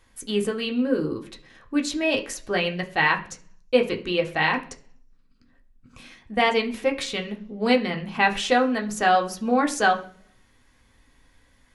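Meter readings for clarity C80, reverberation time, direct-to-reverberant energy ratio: 18.5 dB, 0.45 s, 1.0 dB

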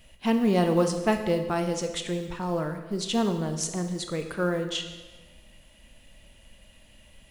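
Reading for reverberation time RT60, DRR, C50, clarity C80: 1.3 s, 6.5 dB, 8.5 dB, 10.0 dB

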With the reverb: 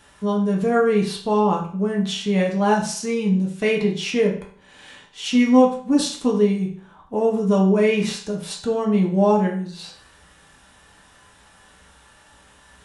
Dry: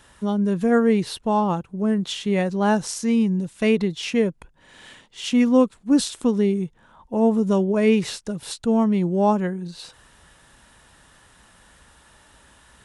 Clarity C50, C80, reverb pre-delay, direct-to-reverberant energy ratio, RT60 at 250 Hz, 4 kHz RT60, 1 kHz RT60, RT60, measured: 7.5 dB, 11.5 dB, 5 ms, -1.5 dB, 0.50 s, 0.45 s, 0.50 s, 0.50 s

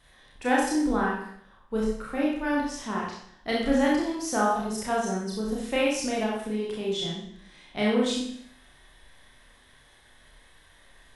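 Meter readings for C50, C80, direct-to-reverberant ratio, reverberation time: 2.0 dB, 5.5 dB, -4.5 dB, 0.65 s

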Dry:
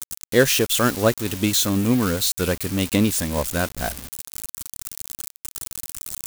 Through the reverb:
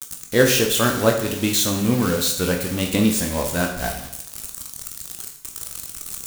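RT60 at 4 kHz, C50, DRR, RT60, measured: 0.75 s, 7.0 dB, 1.5 dB, 0.75 s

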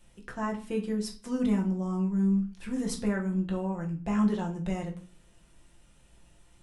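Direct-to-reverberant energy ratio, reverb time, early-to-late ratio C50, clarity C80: -1.0 dB, 0.45 s, 11.0 dB, 17.0 dB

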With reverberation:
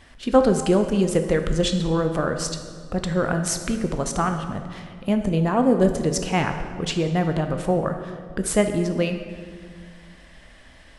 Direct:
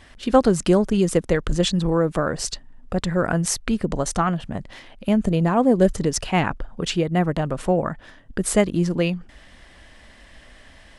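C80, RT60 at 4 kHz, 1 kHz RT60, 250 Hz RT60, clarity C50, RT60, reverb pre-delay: 9.5 dB, 1.3 s, 1.8 s, 2.3 s, 7.5 dB, 1.9 s, 10 ms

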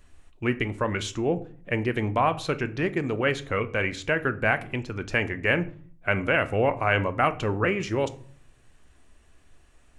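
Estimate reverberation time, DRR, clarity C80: 0.50 s, 11.0 dB, 21.5 dB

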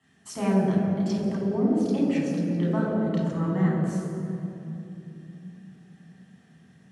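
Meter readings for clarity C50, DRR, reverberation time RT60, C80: -0.5 dB, -5.0 dB, 3.0 s, 1.0 dB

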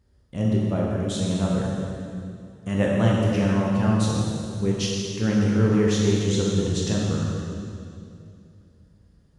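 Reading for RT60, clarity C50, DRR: 2.5 s, -1.5 dB, -4.0 dB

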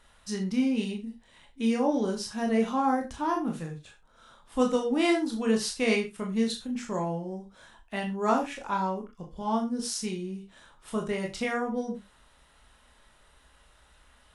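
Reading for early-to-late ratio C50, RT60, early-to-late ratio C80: 11.0 dB, not exponential, 18.0 dB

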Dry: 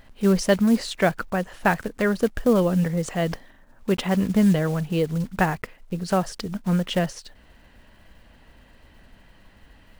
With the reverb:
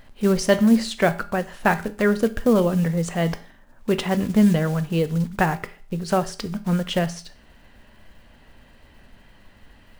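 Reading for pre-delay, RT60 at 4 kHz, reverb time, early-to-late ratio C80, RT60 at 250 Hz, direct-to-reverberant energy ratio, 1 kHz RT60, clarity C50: 5 ms, 0.45 s, 0.45 s, 21.0 dB, 0.45 s, 10.5 dB, 0.45 s, 17.0 dB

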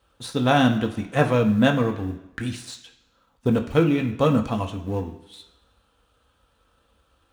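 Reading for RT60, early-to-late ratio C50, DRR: 1.0 s, 10.5 dB, 2.0 dB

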